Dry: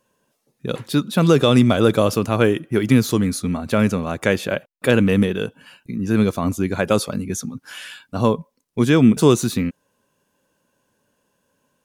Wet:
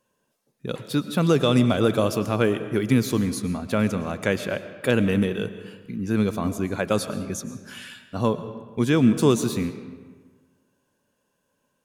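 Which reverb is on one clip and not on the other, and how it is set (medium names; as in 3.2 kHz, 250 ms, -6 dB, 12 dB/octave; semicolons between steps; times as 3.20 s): algorithmic reverb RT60 1.5 s, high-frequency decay 0.65×, pre-delay 75 ms, DRR 11.5 dB; trim -5 dB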